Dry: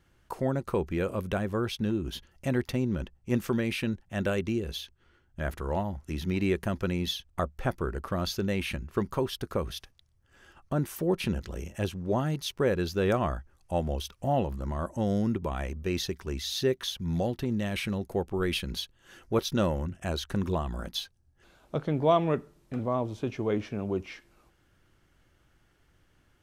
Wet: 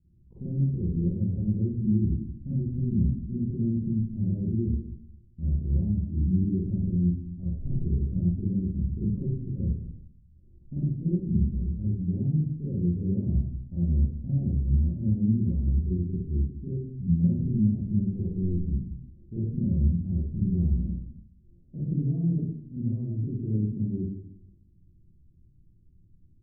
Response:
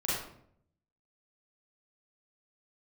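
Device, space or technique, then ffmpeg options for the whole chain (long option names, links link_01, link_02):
club heard from the street: -filter_complex "[0:a]alimiter=limit=-21.5dB:level=0:latency=1,lowpass=frequency=240:width=0.5412,lowpass=frequency=240:width=1.3066[link_01];[1:a]atrim=start_sample=2205[link_02];[link_01][link_02]afir=irnorm=-1:irlink=0"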